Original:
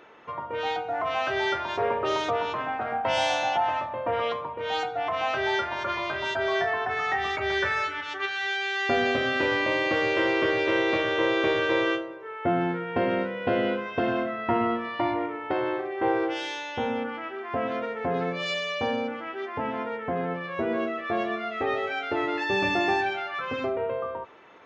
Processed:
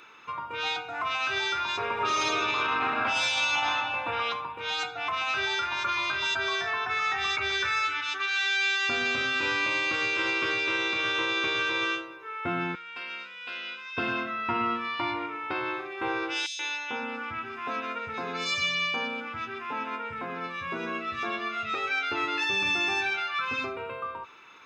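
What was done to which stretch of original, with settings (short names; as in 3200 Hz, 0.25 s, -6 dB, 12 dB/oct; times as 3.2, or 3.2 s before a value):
1.92–3.48 reverb throw, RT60 2.2 s, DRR -7 dB
12.75–13.97 band-pass 5900 Hz, Q 0.62
16.46–21.75 three bands offset in time highs, mids, lows 0.13/0.53 s, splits 180/3300 Hz
whole clip: tilt shelf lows -8.5 dB, about 1400 Hz; comb 0.8 ms, depth 55%; limiter -18.5 dBFS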